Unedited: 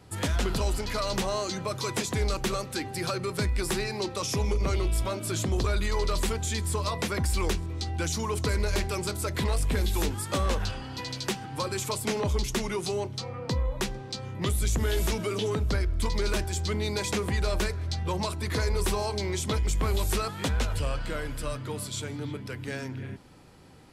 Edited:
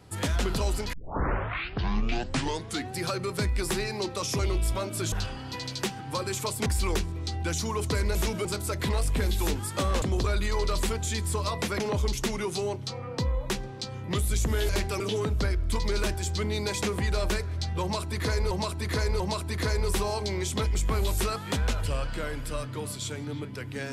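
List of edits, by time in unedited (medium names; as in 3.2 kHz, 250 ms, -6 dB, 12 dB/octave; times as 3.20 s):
0.93 s: tape start 2.05 s
4.39–4.69 s: delete
5.42–7.20 s: swap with 10.57–12.11 s
8.69–9.00 s: swap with 15.00–15.30 s
18.12–18.81 s: loop, 3 plays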